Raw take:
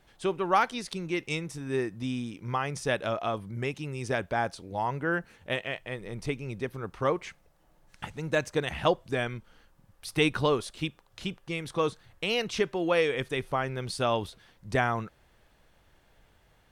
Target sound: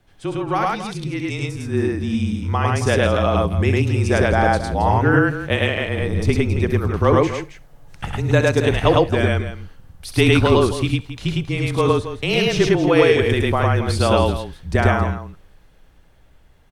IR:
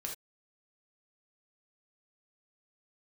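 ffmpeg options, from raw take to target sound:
-filter_complex "[0:a]lowshelf=frequency=220:gain=11,dynaudnorm=framelen=360:gausssize=13:maxgain=11.5dB,afreqshift=-28,aecho=1:1:67.06|105|271.1:0.316|1|0.282,asplit=2[link_01][link_02];[1:a]atrim=start_sample=2205[link_03];[link_02][link_03]afir=irnorm=-1:irlink=0,volume=-13.5dB[link_04];[link_01][link_04]amix=inputs=2:normalize=0,volume=-1.5dB"

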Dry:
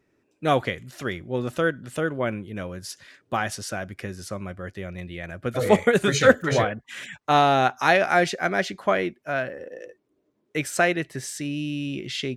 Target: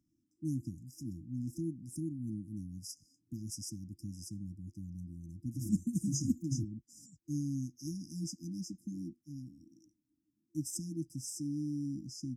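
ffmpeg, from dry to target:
ffmpeg -i in.wav -filter_complex "[0:a]asettb=1/sr,asplit=3[link_01][link_02][link_03];[link_01]atrim=end=1.694[link_04];[link_02]atrim=start=1.69:end=2.72,asetpts=PTS-STARTPTS,afade=type=in:duration=0.004:curve=qsin,afade=type=out:start_time=1.026:duration=0.004:curve=qsin,equalizer=frequency=9900:width=6.2:gain=8[link_05];[link_03]atrim=start=2.716[link_06];[link_04][link_05]acrossfade=duration=0.004:curve1=hsin:curve2=qsin[link_07];[link_07][link_06]acrossfade=duration=0.004:curve1=qsin:curve2=hsin,afftfilt=real='re*(1-between(b*sr/4096,340,4900))':imag='im*(1-between(b*sr/4096,340,4900))':win_size=4096:overlap=0.75,volume=-7.5dB" out.wav

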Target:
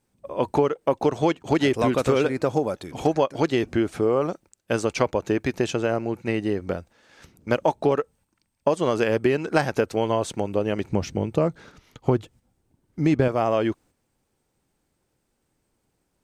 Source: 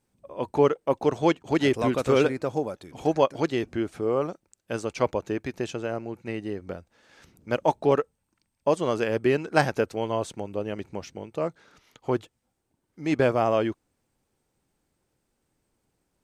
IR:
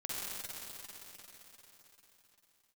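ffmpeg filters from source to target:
-filter_complex "[0:a]agate=range=-6dB:threshold=-53dB:ratio=16:detection=peak,asettb=1/sr,asplit=3[link_01][link_02][link_03];[link_01]atrim=end=10.914[link_04];[link_02]atrim=start=10.91:end=13.28,asetpts=PTS-STARTPTS,afade=type=in:duration=0.004:curve=qsin,afade=type=out:start_time=2.366:duration=0.004:curve=qsin,lowshelf=frequency=270:gain=11.5[link_05];[link_03]atrim=start=13.276[link_06];[link_04][link_05]acrossfade=duration=0.004:curve1=hsin:curve2=qsin[link_07];[link_07][link_06]acrossfade=duration=0.004:curve1=qsin:curve2=hsin,acompressor=threshold=-25dB:ratio=6,volume=8dB"

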